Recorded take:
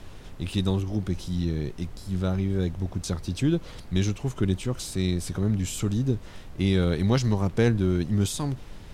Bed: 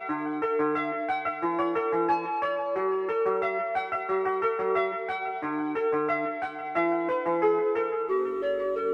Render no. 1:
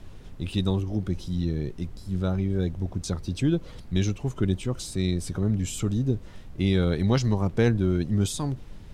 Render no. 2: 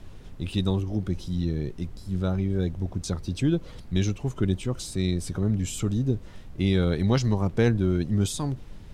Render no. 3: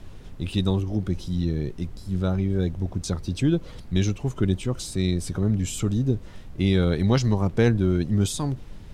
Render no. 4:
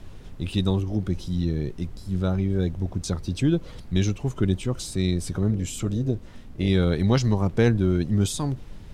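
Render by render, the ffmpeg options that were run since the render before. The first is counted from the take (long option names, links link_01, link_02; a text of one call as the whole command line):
ffmpeg -i in.wav -af "afftdn=noise_reduction=6:noise_floor=-43" out.wav
ffmpeg -i in.wav -af anull out.wav
ffmpeg -i in.wav -af "volume=2dB" out.wav
ffmpeg -i in.wav -filter_complex "[0:a]asplit=3[link_01][link_02][link_03];[link_01]afade=type=out:start_time=5.5:duration=0.02[link_04];[link_02]tremolo=f=240:d=0.462,afade=type=in:start_time=5.5:duration=0.02,afade=type=out:start_time=6.68:duration=0.02[link_05];[link_03]afade=type=in:start_time=6.68:duration=0.02[link_06];[link_04][link_05][link_06]amix=inputs=3:normalize=0" out.wav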